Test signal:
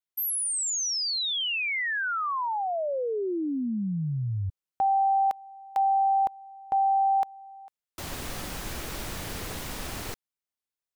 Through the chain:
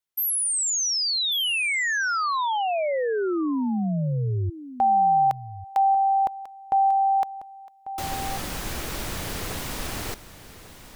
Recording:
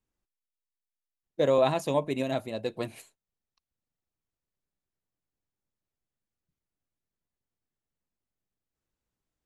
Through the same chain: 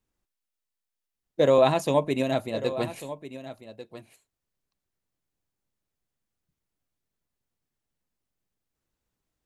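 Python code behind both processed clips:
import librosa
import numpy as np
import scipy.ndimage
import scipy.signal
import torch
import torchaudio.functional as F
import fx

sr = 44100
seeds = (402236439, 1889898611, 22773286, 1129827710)

y = x + 10.0 ** (-14.0 / 20.0) * np.pad(x, (int(1144 * sr / 1000.0), 0))[:len(x)]
y = F.gain(torch.from_numpy(y), 4.0).numpy()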